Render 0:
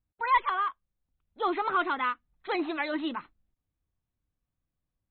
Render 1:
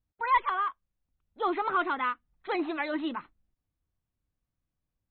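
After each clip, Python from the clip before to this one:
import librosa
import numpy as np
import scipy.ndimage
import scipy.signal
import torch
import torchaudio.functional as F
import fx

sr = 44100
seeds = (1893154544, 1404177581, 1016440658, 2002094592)

y = fx.lowpass(x, sr, hz=3300.0, slope=6)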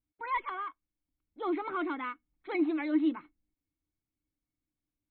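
y = fx.small_body(x, sr, hz=(300.0, 2200.0), ring_ms=55, db=16)
y = y * librosa.db_to_amplitude(-8.5)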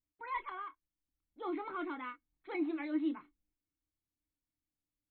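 y = fx.chorus_voices(x, sr, voices=6, hz=0.57, base_ms=26, depth_ms=1.9, mix_pct=25)
y = y * librosa.db_to_amplitude(-4.0)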